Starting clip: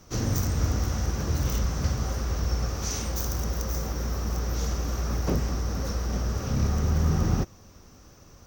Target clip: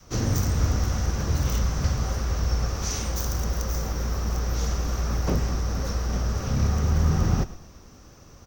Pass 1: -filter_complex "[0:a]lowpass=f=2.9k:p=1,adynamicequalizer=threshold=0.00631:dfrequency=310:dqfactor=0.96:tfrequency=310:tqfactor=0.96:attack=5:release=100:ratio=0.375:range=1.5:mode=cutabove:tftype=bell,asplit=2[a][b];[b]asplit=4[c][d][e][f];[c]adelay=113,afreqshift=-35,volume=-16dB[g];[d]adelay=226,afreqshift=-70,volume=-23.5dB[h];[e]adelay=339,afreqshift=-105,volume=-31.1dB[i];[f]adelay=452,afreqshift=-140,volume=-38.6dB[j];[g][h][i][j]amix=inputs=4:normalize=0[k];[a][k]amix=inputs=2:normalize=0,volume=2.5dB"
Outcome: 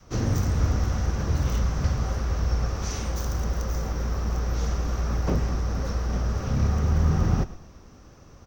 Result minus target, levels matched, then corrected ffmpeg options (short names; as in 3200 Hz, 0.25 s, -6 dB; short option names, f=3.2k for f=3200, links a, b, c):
8000 Hz band -5.5 dB
-filter_complex "[0:a]lowpass=f=10k:p=1,adynamicequalizer=threshold=0.00631:dfrequency=310:dqfactor=0.96:tfrequency=310:tqfactor=0.96:attack=5:release=100:ratio=0.375:range=1.5:mode=cutabove:tftype=bell,asplit=2[a][b];[b]asplit=4[c][d][e][f];[c]adelay=113,afreqshift=-35,volume=-16dB[g];[d]adelay=226,afreqshift=-70,volume=-23.5dB[h];[e]adelay=339,afreqshift=-105,volume=-31.1dB[i];[f]adelay=452,afreqshift=-140,volume=-38.6dB[j];[g][h][i][j]amix=inputs=4:normalize=0[k];[a][k]amix=inputs=2:normalize=0,volume=2.5dB"